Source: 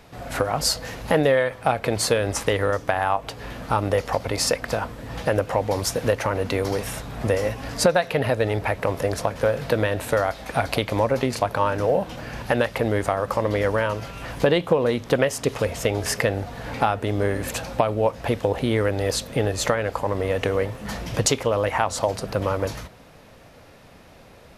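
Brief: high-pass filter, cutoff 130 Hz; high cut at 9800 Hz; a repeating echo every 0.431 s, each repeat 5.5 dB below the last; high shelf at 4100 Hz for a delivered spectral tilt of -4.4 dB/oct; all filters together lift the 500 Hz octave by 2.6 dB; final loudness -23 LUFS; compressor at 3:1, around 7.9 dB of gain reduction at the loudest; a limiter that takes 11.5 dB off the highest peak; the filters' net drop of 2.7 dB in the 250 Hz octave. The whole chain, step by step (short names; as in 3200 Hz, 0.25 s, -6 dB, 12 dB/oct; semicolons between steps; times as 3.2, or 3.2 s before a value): HPF 130 Hz; LPF 9800 Hz; bell 250 Hz -4.5 dB; bell 500 Hz +4 dB; high shelf 4100 Hz -7.5 dB; compressor 3:1, threshold -23 dBFS; limiter -18.5 dBFS; feedback echo 0.431 s, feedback 53%, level -5.5 dB; gain +6 dB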